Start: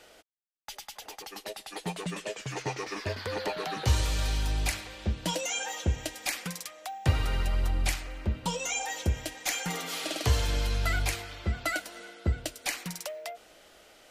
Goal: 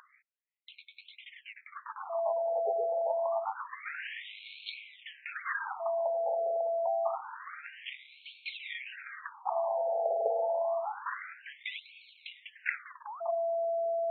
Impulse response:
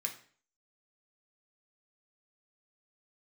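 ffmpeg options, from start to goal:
-af "acrusher=samples=21:mix=1:aa=0.000001:lfo=1:lforange=21:lforate=1.4,aeval=exprs='val(0)+0.0282*sin(2*PI*670*n/s)':channel_layout=same,afftfilt=real='re*between(b*sr/1024,600*pow(3100/600,0.5+0.5*sin(2*PI*0.27*pts/sr))/1.41,600*pow(3100/600,0.5+0.5*sin(2*PI*0.27*pts/sr))*1.41)':imag='im*between(b*sr/1024,600*pow(3100/600,0.5+0.5*sin(2*PI*0.27*pts/sr))/1.41,600*pow(3100/600,0.5+0.5*sin(2*PI*0.27*pts/sr))*1.41)':win_size=1024:overlap=0.75,volume=3dB"

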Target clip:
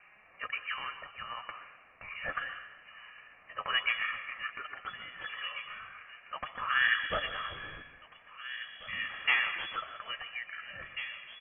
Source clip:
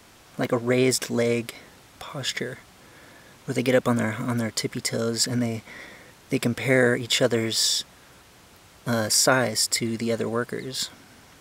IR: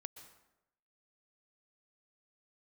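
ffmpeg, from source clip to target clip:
-filter_complex "[0:a]highpass=frequency=830:width=0.5412,highpass=frequency=830:width=1.3066,aecho=1:1:1.8:0.42,asettb=1/sr,asplit=3[link_01][link_02][link_03];[link_01]atrim=end=0.664[link_04];[link_02]atrim=start=0.66:end=1.47,asetpts=PTS-STARTPTS,afade=type=in:duration=0.004:curve=qsin,afade=type=out:start_time=0.806:duration=0.004:curve=qsin,acompressor=threshold=-31dB:ratio=4[link_05];[link_03]atrim=start=1.466[link_06];[link_04][link_05]acrossfade=duration=0.004:curve1=hsin:curve2=qsin[link_07];[link_07][link_06]acrossfade=duration=0.004:curve1=qsin:curve2=hsin,acrossover=split=2300[link_08][link_09];[link_08]aeval=exprs='val(0)*(1-0.7/2+0.7/2*cos(2*PI*1.3*n/s))':channel_layout=same[link_10];[link_09]aeval=exprs='val(0)*(1-0.7/2-0.7/2*cos(2*PI*1.3*n/s))':channel_layout=same[link_11];[link_10][link_11]amix=inputs=2:normalize=0,aeval=exprs='clip(val(0),-1,0.0794)':channel_layout=same,afreqshift=-29,flanger=delay=4.6:depth=7.8:regen=44:speed=0.18:shape=sinusoidal,asettb=1/sr,asplit=3[link_12][link_13][link_14];[link_12]atrim=end=6.784[link_15];[link_13]atrim=start=6.78:end=7.55,asetpts=PTS-STARTPTS,afade=type=in:duration=0.004:curve=qsin,afade=type=out:start_time=0.766:duration=0.004:curve=qsin,aeval=exprs='val(0)+0.00282*(sin(2*PI*60*n/s)+sin(2*PI*2*60*n/s)/2+sin(2*PI*3*60*n/s)/3+sin(2*PI*4*60*n/s)/4+sin(2*PI*5*60*n/s)/5)':channel_layout=same[link_16];[link_14]atrim=start=7.546[link_17];[link_15][link_16]acrossfade=duration=0.004:curve1=hsin:curve2=qsin[link_18];[link_18][link_17]acrossfade=duration=0.004:curve1=qsin:curve2=hsin,asplit=2[link_19][link_20];[link_20]adelay=1691,volume=-8dB,highshelf=frequency=4000:gain=-38[link_21];[link_19][link_21]amix=inputs=2:normalize=0[link_22];[1:a]atrim=start_sample=2205[link_23];[link_22][link_23]afir=irnorm=-1:irlink=0,lowpass=frequency=2900:width_type=q:width=0.5098,lowpass=frequency=2900:width_type=q:width=0.6013,lowpass=frequency=2900:width_type=q:width=0.9,lowpass=frequency=2900:width_type=q:width=2.563,afreqshift=-3400,volume=9dB"

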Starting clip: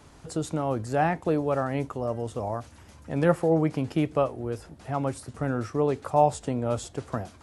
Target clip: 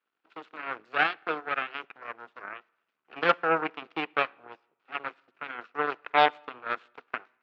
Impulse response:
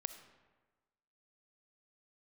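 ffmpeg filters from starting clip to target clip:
-filter_complex "[0:a]aeval=exprs='0.398*(cos(1*acos(clip(val(0)/0.398,-1,1)))-cos(1*PI/2))+0.00355*(cos(3*acos(clip(val(0)/0.398,-1,1)))-cos(3*PI/2))+0.0355*(cos(4*acos(clip(val(0)/0.398,-1,1)))-cos(4*PI/2))+0.0562*(cos(7*acos(clip(val(0)/0.398,-1,1)))-cos(7*PI/2))+0.0178*(cos(8*acos(clip(val(0)/0.398,-1,1)))-cos(8*PI/2))':channel_layout=same,highpass=450,equalizer=frequency=580:width_type=q:width=4:gain=-7,equalizer=frequency=910:width_type=q:width=4:gain=-4,equalizer=frequency=1400:width_type=q:width=4:gain=7,equalizer=frequency=2600:width_type=q:width=4:gain=6,lowpass=frequency=3900:width=0.5412,lowpass=frequency=3900:width=1.3066,asplit=2[link_01][link_02];[1:a]atrim=start_sample=2205,asetrate=66150,aresample=44100[link_03];[link_02][link_03]afir=irnorm=-1:irlink=0,volume=-11dB[link_04];[link_01][link_04]amix=inputs=2:normalize=0,volume=1.5dB"

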